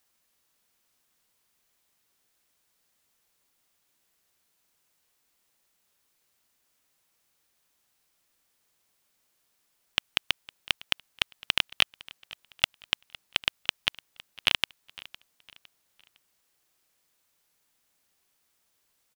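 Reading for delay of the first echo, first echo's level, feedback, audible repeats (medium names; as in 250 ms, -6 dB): 508 ms, -21.0 dB, 37%, 2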